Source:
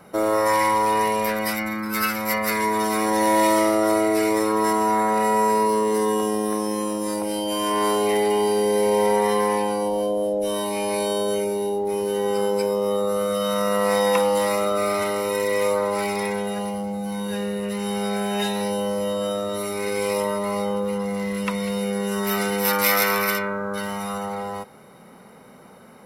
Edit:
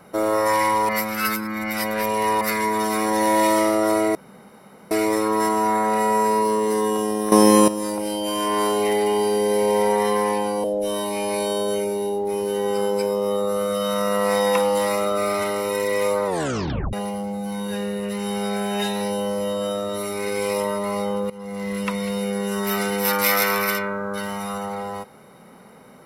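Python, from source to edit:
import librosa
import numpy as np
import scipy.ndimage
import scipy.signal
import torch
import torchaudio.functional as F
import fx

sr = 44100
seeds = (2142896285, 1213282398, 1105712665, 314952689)

y = fx.edit(x, sr, fx.reverse_span(start_s=0.89, length_s=1.52),
    fx.insert_room_tone(at_s=4.15, length_s=0.76),
    fx.clip_gain(start_s=6.56, length_s=0.36, db=12.0),
    fx.cut(start_s=9.88, length_s=0.36),
    fx.tape_stop(start_s=15.86, length_s=0.67),
    fx.fade_in_from(start_s=20.9, length_s=0.43, floor_db=-18.5), tone=tone)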